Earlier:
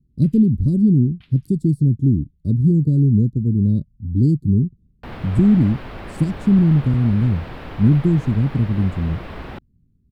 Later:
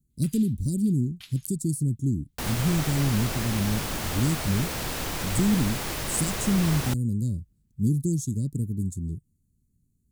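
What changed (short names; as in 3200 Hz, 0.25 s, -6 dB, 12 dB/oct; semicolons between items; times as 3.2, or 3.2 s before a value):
speech -10.0 dB; second sound: entry -2.65 s; master: remove air absorption 430 m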